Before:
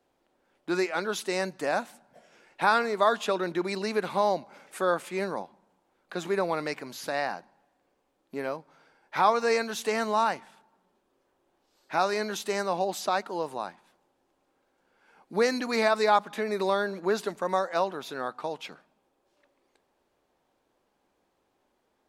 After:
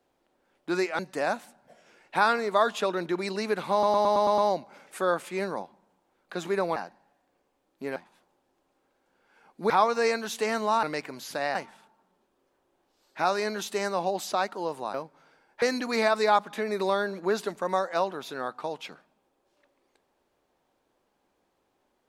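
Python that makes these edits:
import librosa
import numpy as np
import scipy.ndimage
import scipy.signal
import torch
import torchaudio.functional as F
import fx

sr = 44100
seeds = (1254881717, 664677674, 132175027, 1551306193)

y = fx.edit(x, sr, fx.cut(start_s=0.99, length_s=0.46),
    fx.stutter(start_s=4.18, slice_s=0.11, count=7),
    fx.move(start_s=6.56, length_s=0.72, to_s=10.29),
    fx.swap(start_s=8.48, length_s=0.68, other_s=13.68, other_length_s=1.74), tone=tone)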